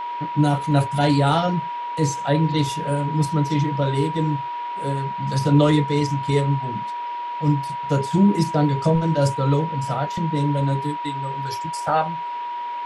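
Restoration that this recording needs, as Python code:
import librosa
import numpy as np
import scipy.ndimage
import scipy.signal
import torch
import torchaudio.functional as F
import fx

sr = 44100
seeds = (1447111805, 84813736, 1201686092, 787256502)

y = fx.notch(x, sr, hz=960.0, q=30.0)
y = fx.noise_reduce(y, sr, print_start_s=6.87, print_end_s=7.37, reduce_db=30.0)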